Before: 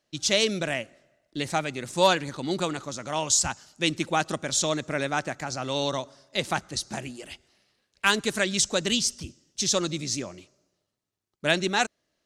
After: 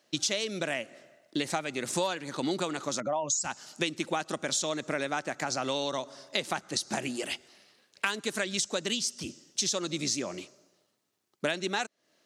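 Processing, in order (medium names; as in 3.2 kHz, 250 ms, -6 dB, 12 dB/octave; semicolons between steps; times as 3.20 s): 3.00–3.44 s: spectral contrast enhancement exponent 2.1; high-pass 200 Hz 12 dB/octave; compression 10:1, threshold -35 dBFS, peak gain reduction 20.5 dB; trim +8 dB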